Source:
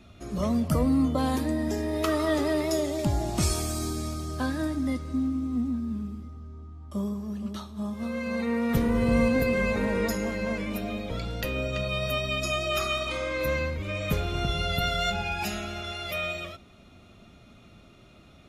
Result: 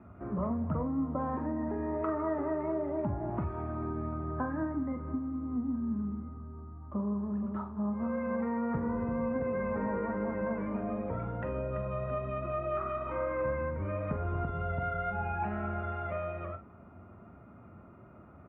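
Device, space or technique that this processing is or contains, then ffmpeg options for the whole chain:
bass amplifier: -filter_complex "[0:a]acompressor=threshold=0.0316:ratio=6,lowpass=1400,highpass=79,equalizer=f=86:t=q:w=4:g=5,equalizer=f=960:t=q:w=4:g=7,equalizer=f=1400:t=q:w=4:g=4,lowpass=f=2100:w=0.5412,lowpass=f=2100:w=1.3066,asplit=2[s0][s1];[s1]adelay=44,volume=0.355[s2];[s0][s2]amix=inputs=2:normalize=0"

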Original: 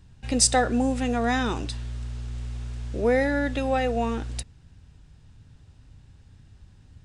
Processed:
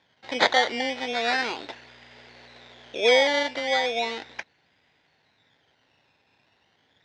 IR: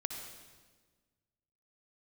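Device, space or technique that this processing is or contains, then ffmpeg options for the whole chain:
circuit-bent sampling toy: -filter_complex "[0:a]asettb=1/sr,asplit=3[s0][s1][s2];[s0]atrim=end=2.124[s3];[s1]atrim=start=2.12:end=3.43,asetpts=PTS-STARTPTS,afade=t=in:d=0.004:c=qsin,afade=t=out:st=1.306:d=0.004:c=qsin,equalizer=f=520:t=o:w=1.2:g=4.5[s4];[s2]atrim=start=3.426[s5];[s3][s4]acrossfade=d=0.004:c1=hsin:c2=qsin[s6];[s6][s5]acrossfade=d=0.004:c1=qsin:c2=hsin,acrusher=samples=13:mix=1:aa=0.000001:lfo=1:lforange=7.8:lforate=0.36,highpass=550,equalizer=f=1200:t=q:w=4:g=-9,equalizer=f=2000:t=q:w=4:g=5,equalizer=f=3700:t=q:w=4:g=6,lowpass=f=5200:w=0.5412,lowpass=f=5200:w=1.3066,volume=1.33"

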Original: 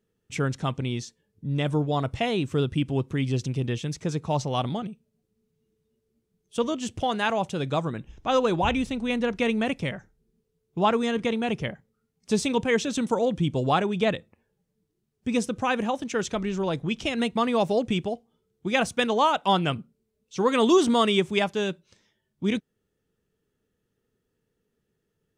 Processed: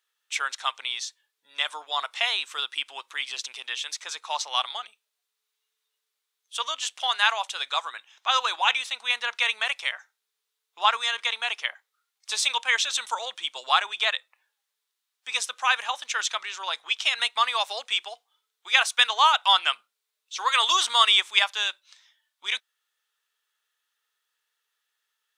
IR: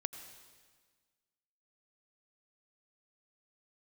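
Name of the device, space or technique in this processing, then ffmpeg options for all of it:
headphones lying on a table: -af "highpass=f=1000:w=0.5412,highpass=f=1000:w=1.3066,equalizer=f=3700:t=o:w=0.45:g=6,volume=2"

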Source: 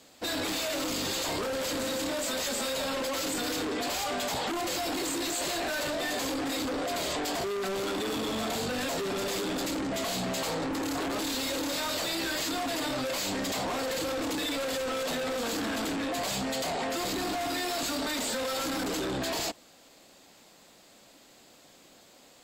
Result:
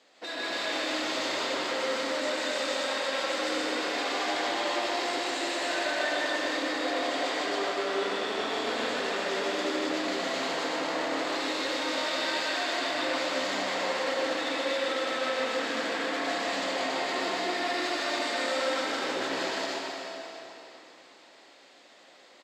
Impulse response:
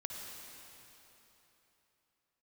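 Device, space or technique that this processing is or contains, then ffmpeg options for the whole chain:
station announcement: -filter_complex "[0:a]highpass=380,lowpass=4600,equalizer=f=1900:t=o:w=0.24:g=5,aecho=1:1:154.5|277:0.891|0.794[s0];[1:a]atrim=start_sample=2205[s1];[s0][s1]afir=irnorm=-1:irlink=0"

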